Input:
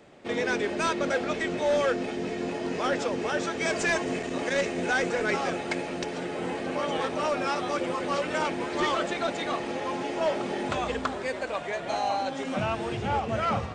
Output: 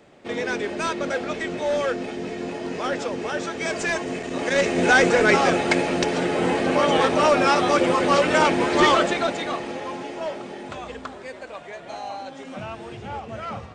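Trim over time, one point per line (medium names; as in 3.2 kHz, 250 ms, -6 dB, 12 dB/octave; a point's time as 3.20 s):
4.20 s +1 dB
4.88 s +10 dB
8.91 s +10 dB
9.42 s +3 dB
10.60 s -5.5 dB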